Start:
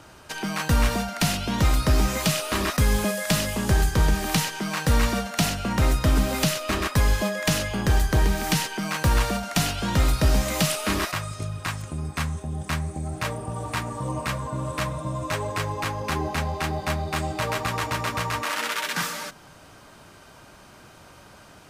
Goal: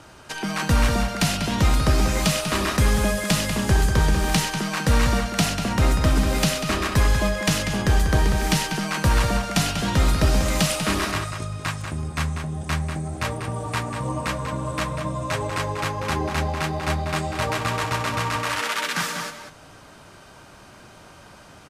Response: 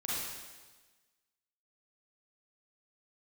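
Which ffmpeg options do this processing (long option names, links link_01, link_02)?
-filter_complex "[0:a]lowpass=12000,asplit=2[link_01][link_02];[link_02]adelay=192.4,volume=-7dB,highshelf=frequency=4000:gain=-4.33[link_03];[link_01][link_03]amix=inputs=2:normalize=0,volume=1.5dB"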